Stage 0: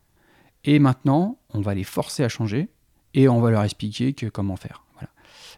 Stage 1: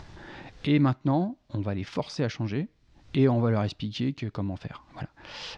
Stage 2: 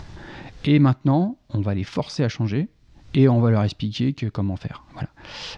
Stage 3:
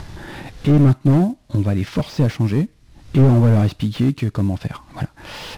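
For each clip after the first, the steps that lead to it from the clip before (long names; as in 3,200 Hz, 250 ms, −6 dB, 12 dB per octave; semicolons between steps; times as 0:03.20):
low-pass filter 5,400 Hz 24 dB per octave; upward compression, threshold −21 dBFS; level −6 dB
bass and treble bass +4 dB, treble +2 dB; level +4 dB
variable-slope delta modulation 64 kbit/s; slew-rate limiting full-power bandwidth 43 Hz; level +5 dB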